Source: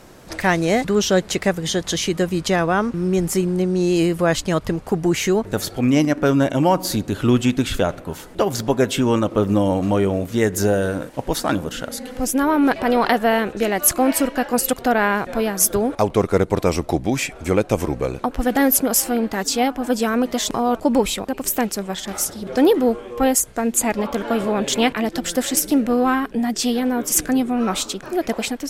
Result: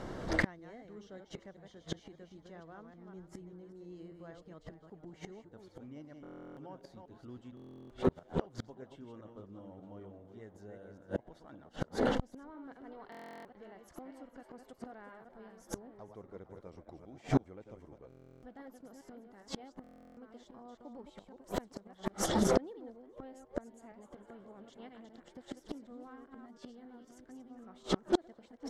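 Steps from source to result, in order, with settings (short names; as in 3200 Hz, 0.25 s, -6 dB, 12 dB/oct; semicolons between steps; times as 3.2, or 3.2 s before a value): reverse delay 0.196 s, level -5.5 dB; tape spacing loss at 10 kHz 20 dB; notch 2500 Hz, Q 5.9; frequency-shifting echo 0.456 s, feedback 47%, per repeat +130 Hz, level -16 dB; flipped gate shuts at -17 dBFS, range -36 dB; stuck buffer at 6.22/7.55/13.1/18.08/19.82, samples 1024, times 14; core saturation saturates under 360 Hz; gain +3.5 dB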